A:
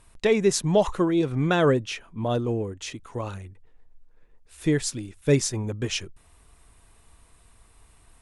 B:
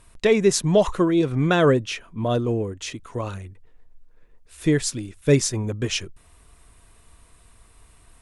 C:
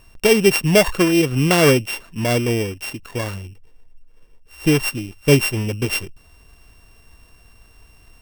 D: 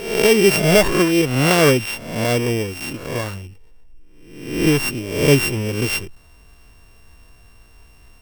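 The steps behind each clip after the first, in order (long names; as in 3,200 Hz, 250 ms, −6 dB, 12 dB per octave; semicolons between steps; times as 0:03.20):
notch filter 830 Hz, Q 12; level +3 dB
samples sorted by size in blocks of 16 samples; level +3.5 dB
peak hold with a rise ahead of every peak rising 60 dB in 0.77 s; level −1 dB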